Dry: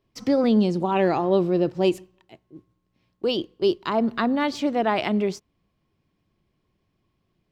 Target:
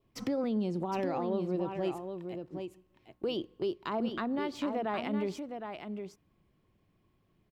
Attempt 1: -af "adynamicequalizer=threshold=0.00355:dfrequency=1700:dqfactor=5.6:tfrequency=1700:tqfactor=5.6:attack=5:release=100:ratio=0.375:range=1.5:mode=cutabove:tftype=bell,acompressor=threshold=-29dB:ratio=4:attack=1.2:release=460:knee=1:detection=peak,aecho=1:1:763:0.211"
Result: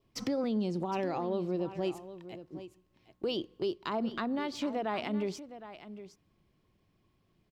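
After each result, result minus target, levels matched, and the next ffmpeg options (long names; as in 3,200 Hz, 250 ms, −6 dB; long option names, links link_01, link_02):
echo-to-direct −6.5 dB; 4,000 Hz band +2.0 dB
-af "adynamicequalizer=threshold=0.00355:dfrequency=1700:dqfactor=5.6:tfrequency=1700:tqfactor=5.6:attack=5:release=100:ratio=0.375:range=1.5:mode=cutabove:tftype=bell,acompressor=threshold=-29dB:ratio=4:attack=1.2:release=460:knee=1:detection=peak,aecho=1:1:763:0.447"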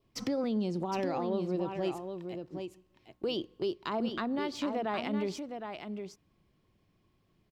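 4,000 Hz band +3.0 dB
-af "adynamicequalizer=threshold=0.00355:dfrequency=1700:dqfactor=5.6:tfrequency=1700:tqfactor=5.6:attack=5:release=100:ratio=0.375:range=1.5:mode=cutabove:tftype=bell,acompressor=threshold=-29dB:ratio=4:attack=1.2:release=460:knee=1:detection=peak,equalizer=frequency=5200:width_type=o:width=1.3:gain=-6,aecho=1:1:763:0.447"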